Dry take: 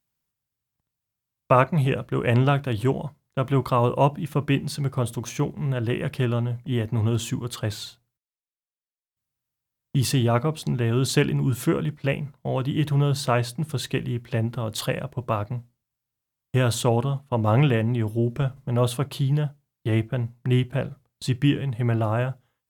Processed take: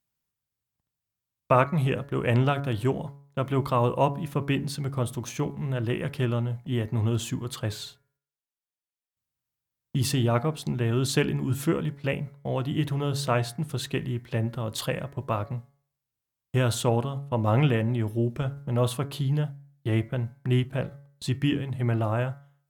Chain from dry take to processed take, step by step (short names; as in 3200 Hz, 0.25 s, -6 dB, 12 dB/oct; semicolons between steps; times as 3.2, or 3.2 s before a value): de-hum 140.9 Hz, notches 16; gain -2.5 dB